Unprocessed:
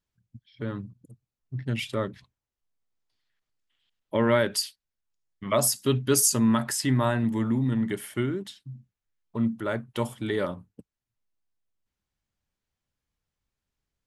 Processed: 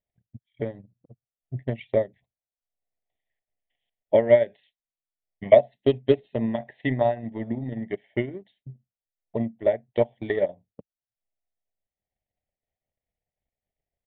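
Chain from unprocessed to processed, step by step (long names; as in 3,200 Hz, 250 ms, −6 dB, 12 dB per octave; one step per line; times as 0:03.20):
drawn EQ curve 320 Hz 0 dB, 710 Hz +14 dB, 1,300 Hz −25 dB, 1,900 Hz +6 dB, 2,700 Hz −3 dB
transient designer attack +11 dB, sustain −9 dB
downsampling to 8,000 Hz
level −7.5 dB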